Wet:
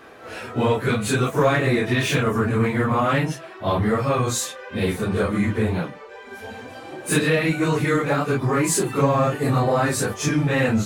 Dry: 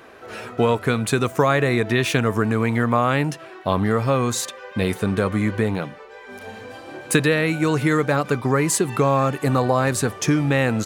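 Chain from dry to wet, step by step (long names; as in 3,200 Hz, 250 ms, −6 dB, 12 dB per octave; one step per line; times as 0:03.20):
random phases in long frames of 100 ms
in parallel at −6 dB: soft clipping −18.5 dBFS, distortion −11 dB
on the sum: level −3 dB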